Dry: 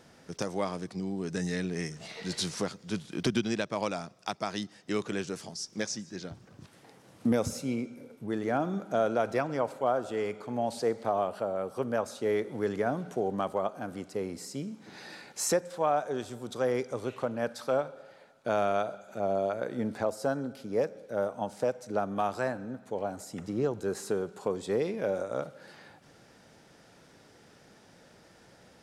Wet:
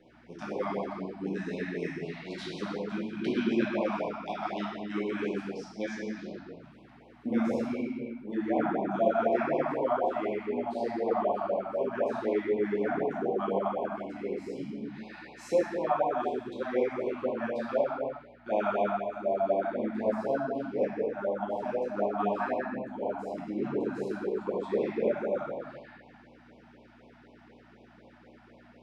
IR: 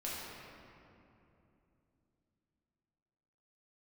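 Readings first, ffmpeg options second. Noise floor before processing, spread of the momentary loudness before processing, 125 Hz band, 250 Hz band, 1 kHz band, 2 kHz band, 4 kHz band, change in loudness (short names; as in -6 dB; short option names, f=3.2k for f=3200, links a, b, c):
-58 dBFS, 10 LU, -4.5 dB, +1.5 dB, +1.5 dB, +0.5 dB, n/a, +1.0 dB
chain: -filter_complex "[0:a]aeval=exprs='val(0)+0.00398*(sin(2*PI*60*n/s)+sin(2*PI*2*60*n/s)/2+sin(2*PI*3*60*n/s)/3+sin(2*PI*4*60*n/s)/4+sin(2*PI*5*60*n/s)/5)':c=same,acrossover=split=180 3200:gain=0.0794 1 0.0794[a][b][c];[a][b][c]amix=inputs=3:normalize=0[d];[1:a]atrim=start_sample=2205,afade=t=out:st=0.44:d=0.01,atrim=end_sample=19845[e];[d][e]afir=irnorm=-1:irlink=0,afftfilt=real='re*(1-between(b*sr/1024,400*pow(1600/400,0.5+0.5*sin(2*PI*4*pts/sr))/1.41,400*pow(1600/400,0.5+0.5*sin(2*PI*4*pts/sr))*1.41))':imag='im*(1-between(b*sr/1024,400*pow(1600/400,0.5+0.5*sin(2*PI*4*pts/sr))/1.41,400*pow(1600/400,0.5+0.5*sin(2*PI*4*pts/sr))*1.41))':win_size=1024:overlap=0.75,volume=1dB"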